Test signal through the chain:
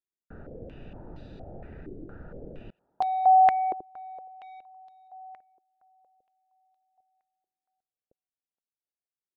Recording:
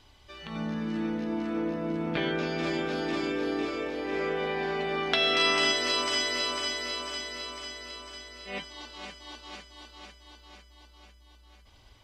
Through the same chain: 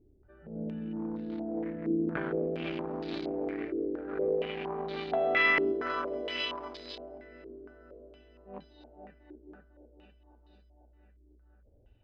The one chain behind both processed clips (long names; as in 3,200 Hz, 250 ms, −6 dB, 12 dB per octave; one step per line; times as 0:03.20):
adaptive Wiener filter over 41 samples
feedback echo with a high-pass in the loop 470 ms, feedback 27%, high-pass 560 Hz, level −22 dB
low-pass on a step sequencer 4.3 Hz 370–4,000 Hz
level −4.5 dB